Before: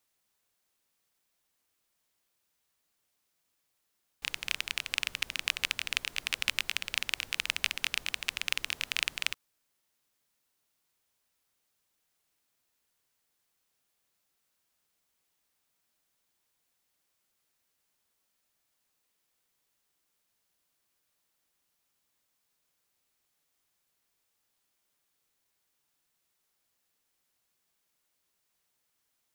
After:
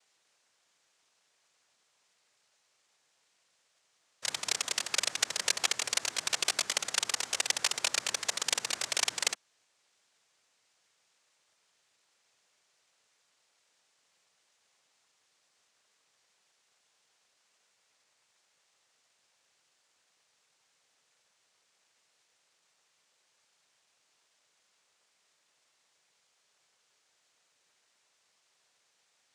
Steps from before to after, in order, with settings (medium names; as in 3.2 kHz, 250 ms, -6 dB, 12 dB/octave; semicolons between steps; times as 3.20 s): noise-vocoded speech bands 3; trim +2 dB